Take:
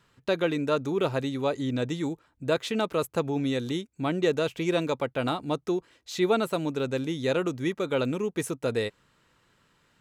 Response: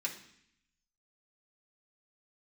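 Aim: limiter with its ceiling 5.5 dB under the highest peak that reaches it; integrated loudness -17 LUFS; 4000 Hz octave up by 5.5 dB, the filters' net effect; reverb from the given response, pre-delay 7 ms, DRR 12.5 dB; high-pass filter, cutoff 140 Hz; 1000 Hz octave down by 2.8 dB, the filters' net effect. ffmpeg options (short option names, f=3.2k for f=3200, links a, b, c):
-filter_complex "[0:a]highpass=140,equalizer=f=1k:t=o:g=-4.5,equalizer=f=4k:t=o:g=6.5,alimiter=limit=-17dB:level=0:latency=1,asplit=2[a][b];[1:a]atrim=start_sample=2205,adelay=7[c];[b][c]afir=irnorm=-1:irlink=0,volume=-14.5dB[d];[a][d]amix=inputs=2:normalize=0,volume=13dB"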